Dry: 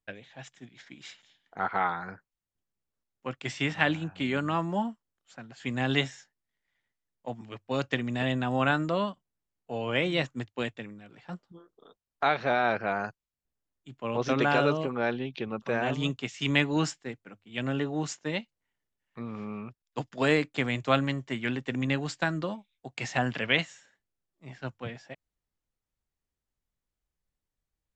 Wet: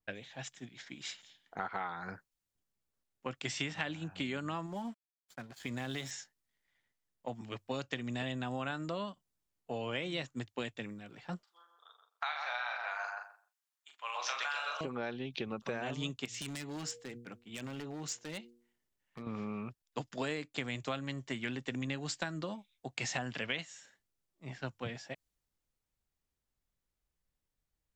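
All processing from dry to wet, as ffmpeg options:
ffmpeg -i in.wav -filter_complex "[0:a]asettb=1/sr,asplit=3[link_01][link_02][link_03];[link_01]atrim=end=4.664[link_04];[link_02]atrim=start=4.66:end=6.11,asetpts=PTS-STARTPTS,afade=type=in:duration=0.004:curve=qsin,afade=type=out:start_time=1.446:duration=0.004:curve=qsin,acompressor=threshold=-33dB:ratio=4:attack=3.2:release=140:knee=1:detection=peak,aeval=exprs='sgn(val(0))*max(abs(val(0))-0.00178,0)':channel_layout=same,bandreject=frequency=2800:width=13[link_05];[link_03]atrim=start=6.106[link_06];[link_04][link_05]acrossfade=duration=0.004:curve1=hsin:curve2=qsin[link_07];[link_07][link_06]acrossfade=duration=0.004:curve1=qsin:curve2=hsin,asettb=1/sr,asplit=3[link_08][link_09][link_10];[link_08]atrim=end=11.434[link_11];[link_09]atrim=start=11.43:end=14.81,asetpts=PTS-STARTPTS,afade=type=in:duration=0.004:curve=qsin,afade=type=out:start_time=3.376:duration=0.004:curve=qsin,highpass=frequency=910:width=0.5412,highpass=frequency=910:width=1.3066,asplit=2[link_12][link_13];[link_13]adelay=41,volume=-6dB[link_14];[link_12][link_14]amix=inputs=2:normalize=0,atrim=end_sample=149058,asplit=2[link_15][link_16];[link_16]adelay=129,lowpass=frequency=1600:poles=1,volume=-4dB,asplit=2[link_17][link_18];[link_18]adelay=129,lowpass=frequency=1600:poles=1,volume=0.19,asplit=2[link_19][link_20];[link_20]adelay=129,lowpass=frequency=1600:poles=1,volume=0.19[link_21];[link_15][link_17][link_19][link_21]amix=inputs=4:normalize=0,atrim=end_sample=149058[link_22];[link_10]atrim=start=14.806[link_23];[link_11][link_22]acrossfade=duration=0.004:curve1=hsin:curve2=qsin[link_24];[link_24][link_23]acrossfade=duration=0.004:curve1=qsin:curve2=hsin,asettb=1/sr,asplit=3[link_25][link_26][link_27];[link_25]atrim=end=16.254[link_28];[link_26]atrim=start=16.25:end=19.27,asetpts=PTS-STARTPTS,afade=type=in:duration=0.004:curve=qsin,afade=type=out:start_time=3.016:duration=0.004:curve=qsin,bandreject=frequency=119:width_type=h:width=4,bandreject=frequency=238:width_type=h:width=4,bandreject=frequency=357:width_type=h:width=4,bandreject=frequency=476:width_type=h:width=4,acompressor=threshold=-40dB:ratio=4:attack=3.2:release=140:knee=1:detection=peak,aeval=exprs='0.0158*(abs(mod(val(0)/0.0158+3,4)-2)-1)':channel_layout=same[link_29];[link_27]atrim=start=19.266[link_30];[link_28][link_29]acrossfade=duration=0.004:curve1=hsin:curve2=qsin[link_31];[link_31][link_30]acrossfade=duration=0.004:curve1=qsin:curve2=hsin,acompressor=threshold=-35dB:ratio=6,adynamicequalizer=threshold=0.00178:dfrequency=3400:dqfactor=0.7:tfrequency=3400:tqfactor=0.7:attack=5:release=100:ratio=0.375:range=3.5:mode=boostabove:tftype=highshelf" out.wav

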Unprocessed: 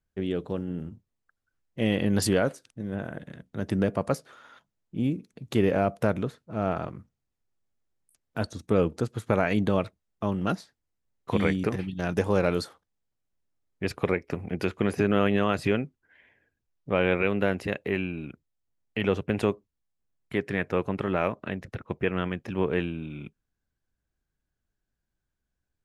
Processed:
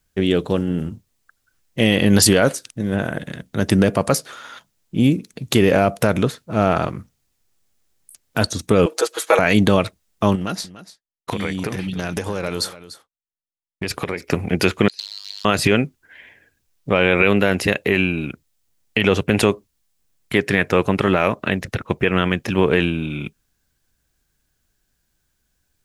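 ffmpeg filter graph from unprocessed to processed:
ffmpeg -i in.wav -filter_complex "[0:a]asettb=1/sr,asplit=3[link_01][link_02][link_03];[link_01]atrim=end=8.864[link_04];[link_02]atrim=start=8.86:end=9.39,asetpts=PTS-STARTPTS,afade=type=in:duration=0.004:curve=qsin,afade=type=out:start_time=0.526:duration=0.004:curve=qsin,highpass=frequency=440:width=0.5412,highpass=frequency=440:width=1.3066,aecho=1:1:6.2:0.78,atrim=end_sample=23373[link_05];[link_03]atrim=start=9.386[link_06];[link_04][link_05]acrossfade=duration=0.004:curve1=hsin:curve2=qsin[link_07];[link_07][link_06]acrossfade=duration=0.004:curve1=qsin:curve2=hsin,asettb=1/sr,asplit=3[link_08][link_09][link_10];[link_08]atrim=end=10.354[link_11];[link_09]atrim=start=10.35:end=14.25,asetpts=PTS-STARTPTS,afade=type=in:duration=0.004:curve=qsin,afade=type=out:start_time=3.896:duration=0.004:curve=qsin,agate=range=-33dB:threshold=-52dB:ratio=3:release=100:detection=peak,acompressor=threshold=-32dB:ratio=6:attack=3.2:release=140:knee=1:detection=peak,aecho=1:1:293:0.168,atrim=end_sample=171990[link_12];[link_10]atrim=start=14.246[link_13];[link_11][link_12]acrossfade=duration=0.004:curve1=hsin:curve2=qsin[link_14];[link_14][link_13]acrossfade=duration=0.004:curve1=qsin:curve2=hsin,asettb=1/sr,asplit=3[link_15][link_16][link_17];[link_15]atrim=end=14.884[link_18];[link_16]atrim=start=14.88:end=15.45,asetpts=PTS-STARTPTS,afade=type=in:duration=0.004:curve=qsin,afade=type=out:start_time=0.566:duration=0.004:curve=qsin,acompressor=threshold=-27dB:ratio=6:attack=3.2:release=140:knee=1:detection=peak,aeval=exprs='(mod(18.8*val(0)+1,2)-1)/18.8':channel_layout=same,bandpass=frequency=4200:width_type=q:width=13[link_19];[link_17]atrim=start=15.446[link_20];[link_18][link_19]acrossfade=duration=0.004:curve1=hsin:curve2=qsin[link_21];[link_21][link_20]acrossfade=duration=0.004:curve1=qsin:curve2=hsin,highshelf=frequency=2500:gain=10.5,alimiter=level_in=12.5dB:limit=-1dB:release=50:level=0:latency=1,volume=-1.5dB" out.wav

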